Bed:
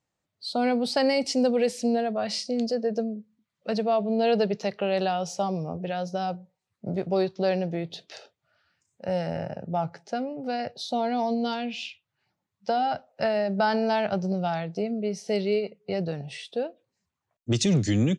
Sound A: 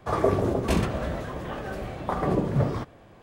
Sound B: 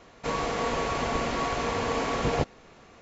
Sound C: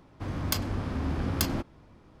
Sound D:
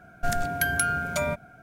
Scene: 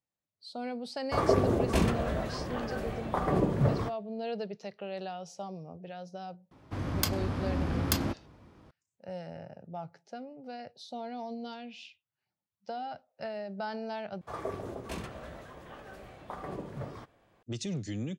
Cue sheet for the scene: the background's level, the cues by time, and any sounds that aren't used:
bed −13 dB
0:01.05: mix in A −2.5 dB + downward expander −39 dBFS
0:06.51: mix in C −0.5 dB + high-pass filter 50 Hz
0:14.21: overwrite with A −11 dB + low-shelf EQ 500 Hz −6.5 dB
not used: B, D

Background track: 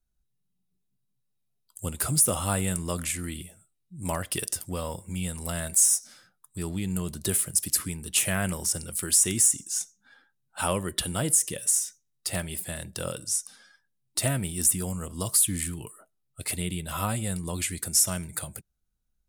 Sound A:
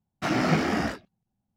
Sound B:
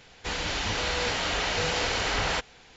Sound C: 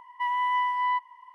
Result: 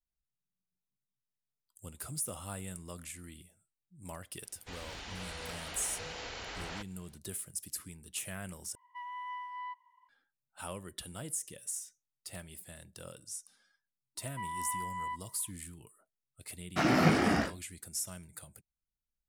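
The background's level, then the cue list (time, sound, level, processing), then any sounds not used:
background track −15 dB
0:04.42: mix in B −15.5 dB
0:08.75: overwrite with C −16 dB
0:14.17: mix in C −12.5 dB
0:16.54: mix in A −2 dB

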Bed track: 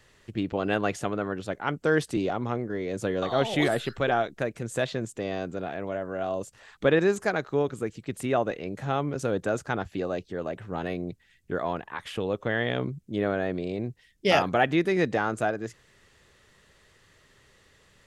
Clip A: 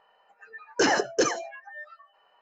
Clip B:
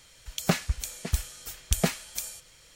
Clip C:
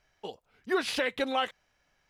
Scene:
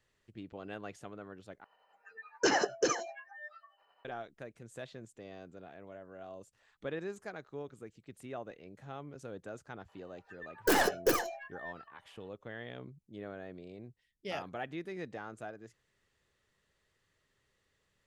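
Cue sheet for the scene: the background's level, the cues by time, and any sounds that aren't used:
bed track −17.5 dB
0:01.64: overwrite with A −4.5 dB + amplitude tremolo 11 Hz, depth 37%
0:09.88: mix in A −4.5 dB + stylus tracing distortion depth 0.23 ms
not used: B, C

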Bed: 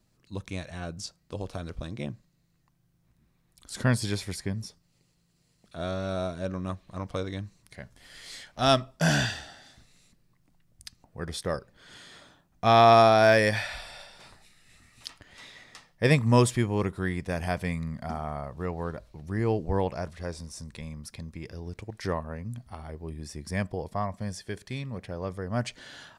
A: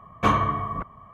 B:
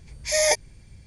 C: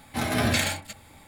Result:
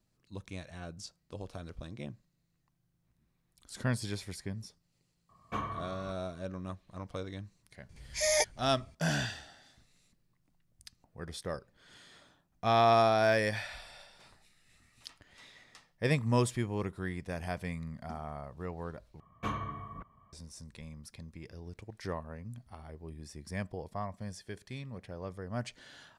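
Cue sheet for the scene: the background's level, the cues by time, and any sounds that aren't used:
bed −7.5 dB
0:05.29: mix in A −16 dB
0:07.89: mix in B −7.5 dB
0:19.20: overwrite with A −12.5 dB + parametric band 780 Hz −4.5 dB 2.5 octaves
not used: C

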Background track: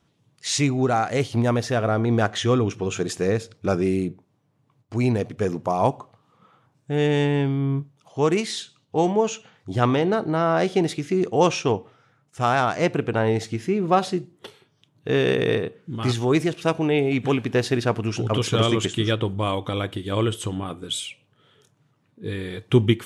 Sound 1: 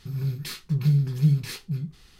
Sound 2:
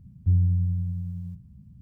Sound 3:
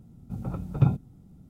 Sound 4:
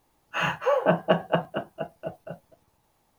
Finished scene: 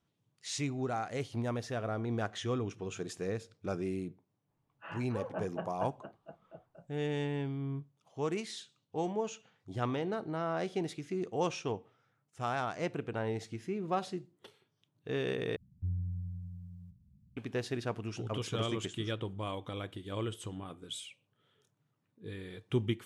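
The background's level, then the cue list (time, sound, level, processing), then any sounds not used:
background track −14 dB
0:04.48: mix in 4 −16.5 dB + high-frequency loss of the air 420 metres
0:15.56: overwrite with 2 −14.5 dB
not used: 1, 3

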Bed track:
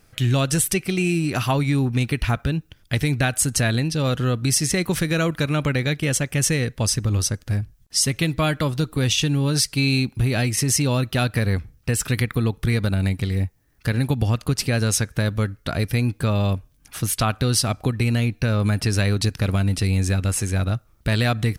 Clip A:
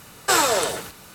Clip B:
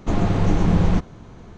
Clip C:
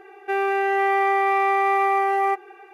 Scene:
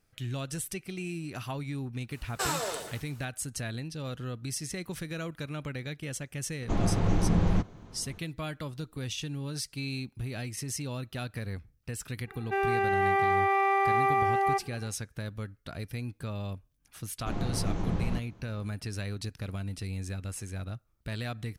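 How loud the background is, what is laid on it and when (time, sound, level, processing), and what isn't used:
bed track −15.5 dB
0:02.11: mix in A −12.5 dB
0:06.62: mix in B −7.5 dB
0:12.23: mix in C −5.5 dB, fades 0.10 s
0:17.19: mix in B −13 dB

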